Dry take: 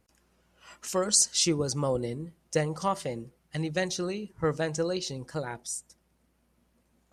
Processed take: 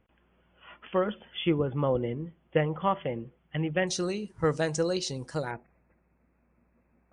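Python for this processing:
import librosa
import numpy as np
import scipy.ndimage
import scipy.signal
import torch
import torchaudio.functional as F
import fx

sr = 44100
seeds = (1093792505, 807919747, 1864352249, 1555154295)

y = fx.brickwall_lowpass(x, sr, high_hz=fx.steps((0.0, 3500.0), (3.87, 11000.0), (5.5, 2700.0)))
y = F.gain(torch.from_numpy(y), 1.5).numpy()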